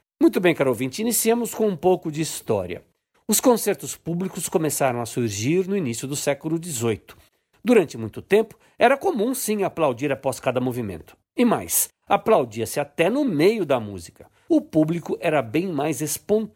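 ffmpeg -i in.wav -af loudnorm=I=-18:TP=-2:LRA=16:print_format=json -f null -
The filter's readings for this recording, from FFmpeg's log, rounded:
"input_i" : "-22.4",
"input_tp" : "-4.9",
"input_lra" : "1.9",
"input_thresh" : "-32.8",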